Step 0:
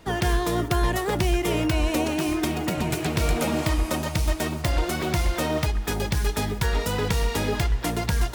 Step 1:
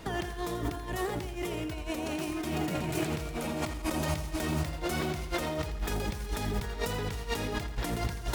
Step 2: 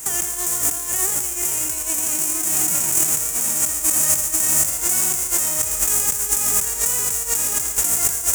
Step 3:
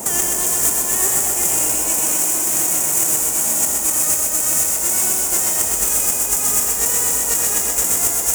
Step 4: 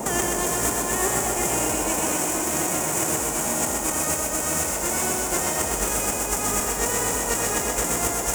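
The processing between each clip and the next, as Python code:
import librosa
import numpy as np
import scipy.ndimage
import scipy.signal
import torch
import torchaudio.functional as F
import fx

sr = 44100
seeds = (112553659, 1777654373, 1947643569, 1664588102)

y1 = fx.over_compress(x, sr, threshold_db=-31.0, ratio=-1.0)
y1 = fx.echo_crushed(y1, sr, ms=84, feedback_pct=55, bits=9, wet_db=-11)
y1 = y1 * 10.0 ** (-3.0 / 20.0)
y2 = fx.envelope_flatten(y1, sr, power=0.3)
y2 = fx.high_shelf_res(y2, sr, hz=5500.0, db=11.0, q=3.0)
y2 = y2 * 10.0 ** (2.5 / 20.0)
y3 = fx.dmg_noise_band(y2, sr, seeds[0], low_hz=150.0, high_hz=930.0, level_db=-38.0)
y3 = fx.rider(y3, sr, range_db=10, speed_s=0.5)
y3 = fx.echo_thinned(y3, sr, ms=127, feedback_pct=69, hz=160.0, wet_db=-4)
y4 = fx.lowpass(y3, sr, hz=1900.0, slope=6)
y4 = y4 * 10.0 ** (4.0 / 20.0)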